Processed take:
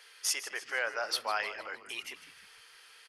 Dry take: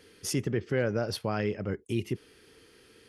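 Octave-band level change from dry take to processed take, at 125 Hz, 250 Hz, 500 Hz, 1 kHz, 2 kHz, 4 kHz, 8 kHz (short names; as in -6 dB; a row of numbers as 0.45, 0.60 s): under -35 dB, -26.0 dB, -10.5 dB, +3.0 dB, +5.0 dB, +4.5 dB, +4.0 dB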